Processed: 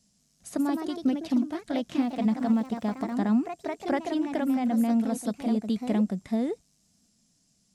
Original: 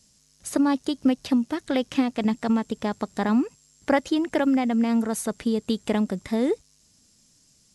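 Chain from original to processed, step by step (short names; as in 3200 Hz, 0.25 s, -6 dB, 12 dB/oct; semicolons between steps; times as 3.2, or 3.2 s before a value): 1.97–3.15 crackle 62/s -34 dBFS; echoes that change speed 0.187 s, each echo +2 st, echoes 2, each echo -6 dB; small resonant body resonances 200/690 Hz, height 9 dB, ringing for 35 ms; gain -9 dB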